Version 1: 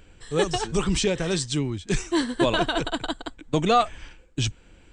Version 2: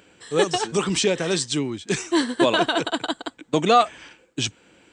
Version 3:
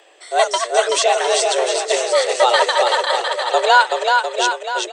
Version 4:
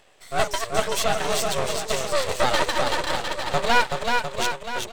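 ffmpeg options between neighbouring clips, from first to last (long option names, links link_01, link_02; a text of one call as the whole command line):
ffmpeg -i in.wav -af "highpass=210,volume=3.5dB" out.wav
ffmpeg -i in.wav -af "afreqshift=250,aecho=1:1:380|703|977.6|1211|1409:0.631|0.398|0.251|0.158|0.1,volume=4dB" out.wav
ffmpeg -i in.wav -af "aeval=exprs='max(val(0),0)':channel_layout=same,volume=-3dB" out.wav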